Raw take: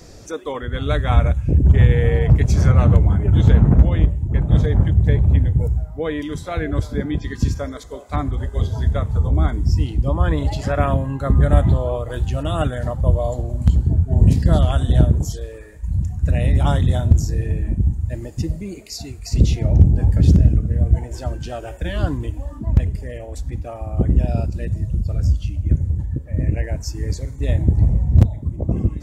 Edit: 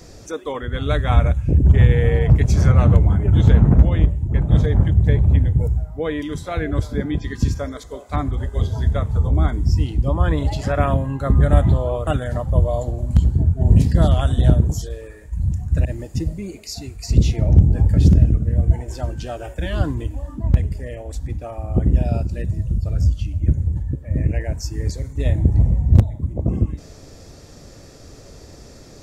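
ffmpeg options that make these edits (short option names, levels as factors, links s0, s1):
-filter_complex "[0:a]asplit=3[s0][s1][s2];[s0]atrim=end=12.072[s3];[s1]atrim=start=12.578:end=16.362[s4];[s2]atrim=start=18.078[s5];[s3][s4]acrossfade=d=0.004:c1=hsin:c2=hsin[s6];[s6][s5]acrossfade=d=0.004:c1=hsin:c2=hsin"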